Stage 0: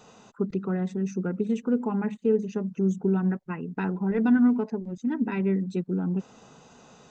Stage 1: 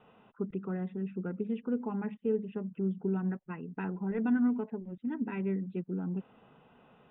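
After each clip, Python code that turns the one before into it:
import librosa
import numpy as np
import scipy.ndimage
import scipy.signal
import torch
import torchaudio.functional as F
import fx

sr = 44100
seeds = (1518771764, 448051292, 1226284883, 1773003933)

y = scipy.signal.sosfilt(scipy.signal.butter(16, 3400.0, 'lowpass', fs=sr, output='sos'), x)
y = y * librosa.db_to_amplitude(-7.5)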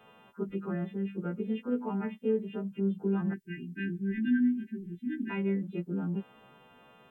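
y = fx.freq_snap(x, sr, grid_st=2)
y = fx.spec_erase(y, sr, start_s=3.34, length_s=1.96, low_hz=390.0, high_hz=1500.0)
y = y * librosa.db_to_amplitude(2.5)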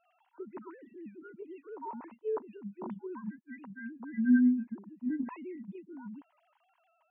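y = fx.sine_speech(x, sr)
y = fx.peak_eq(y, sr, hz=960.0, db=14.0, octaves=0.4)
y = y * librosa.db_to_amplitude(-2.5)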